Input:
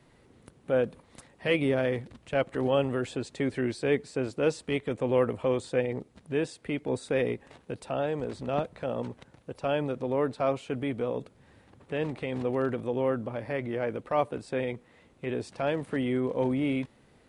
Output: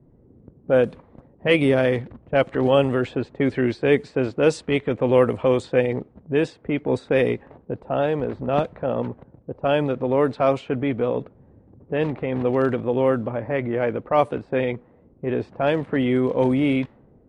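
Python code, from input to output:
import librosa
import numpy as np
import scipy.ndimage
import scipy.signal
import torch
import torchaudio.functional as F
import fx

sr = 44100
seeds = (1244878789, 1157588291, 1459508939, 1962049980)

y = fx.env_lowpass(x, sr, base_hz=370.0, full_db=-22.0)
y = y * librosa.db_to_amplitude(8.0)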